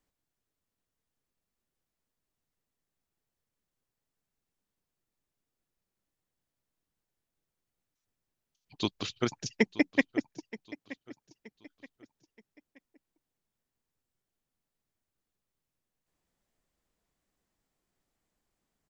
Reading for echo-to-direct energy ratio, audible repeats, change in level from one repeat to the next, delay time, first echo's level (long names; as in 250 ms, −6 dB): −17.0 dB, 3, −8.5 dB, 925 ms, −17.5 dB